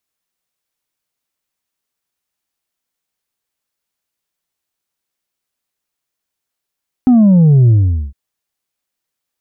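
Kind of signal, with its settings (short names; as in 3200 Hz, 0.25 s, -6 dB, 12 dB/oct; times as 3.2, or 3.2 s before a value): sub drop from 260 Hz, over 1.06 s, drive 3 dB, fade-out 0.44 s, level -5.5 dB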